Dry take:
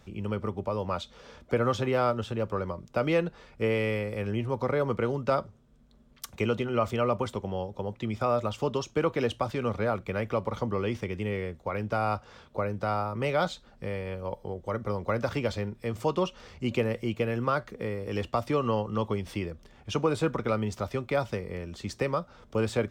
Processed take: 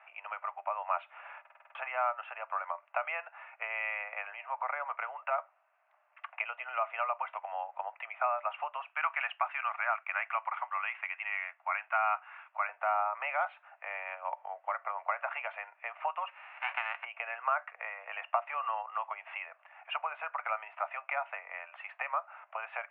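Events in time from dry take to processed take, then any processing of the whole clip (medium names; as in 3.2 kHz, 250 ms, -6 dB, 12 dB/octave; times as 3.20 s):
1.40 s: stutter in place 0.05 s, 7 plays
5.28–6.71 s: dynamic bell 1 kHz, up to -3 dB, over -41 dBFS, Q 0.85
8.88–12.69 s: high-pass 1.1 kHz
16.27–17.03 s: formants flattened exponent 0.1
whole clip: compression, threshold -30 dBFS; Chebyshev band-pass 650–2700 Hz, order 5; trim +7 dB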